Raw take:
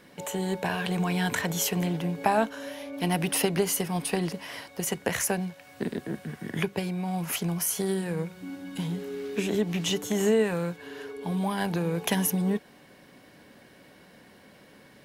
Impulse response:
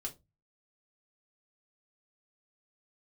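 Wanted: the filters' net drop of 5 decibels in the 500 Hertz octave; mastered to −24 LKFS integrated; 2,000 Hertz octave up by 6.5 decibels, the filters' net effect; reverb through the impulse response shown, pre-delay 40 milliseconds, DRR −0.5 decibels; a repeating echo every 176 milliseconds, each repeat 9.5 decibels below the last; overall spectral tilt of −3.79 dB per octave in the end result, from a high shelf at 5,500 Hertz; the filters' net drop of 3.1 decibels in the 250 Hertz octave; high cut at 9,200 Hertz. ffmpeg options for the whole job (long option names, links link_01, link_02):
-filter_complex "[0:a]lowpass=9200,equalizer=frequency=250:width_type=o:gain=-4,equalizer=frequency=500:width_type=o:gain=-5.5,equalizer=frequency=2000:width_type=o:gain=7.5,highshelf=frequency=5500:gain=6,aecho=1:1:176|352|528|704:0.335|0.111|0.0365|0.012,asplit=2[link_01][link_02];[1:a]atrim=start_sample=2205,adelay=40[link_03];[link_02][link_03]afir=irnorm=-1:irlink=0,volume=1.5dB[link_04];[link_01][link_04]amix=inputs=2:normalize=0,volume=1dB"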